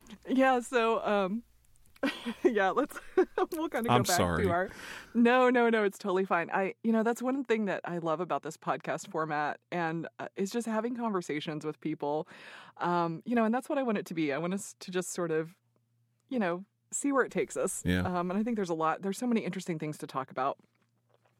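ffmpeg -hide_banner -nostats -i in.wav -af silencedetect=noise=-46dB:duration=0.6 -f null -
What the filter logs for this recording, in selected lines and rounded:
silence_start: 15.50
silence_end: 16.31 | silence_duration: 0.81
silence_start: 20.53
silence_end: 21.40 | silence_duration: 0.87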